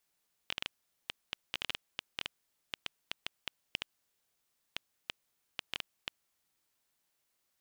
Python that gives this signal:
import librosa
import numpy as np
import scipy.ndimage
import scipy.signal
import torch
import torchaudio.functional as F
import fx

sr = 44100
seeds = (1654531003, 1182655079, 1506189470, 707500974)

y = fx.geiger_clicks(sr, seeds[0], length_s=5.7, per_s=5.8, level_db=-16.5)